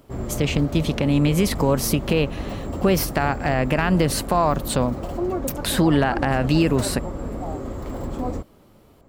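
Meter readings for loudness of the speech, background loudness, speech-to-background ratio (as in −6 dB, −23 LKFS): −21.5 LKFS, −30.5 LKFS, 9.0 dB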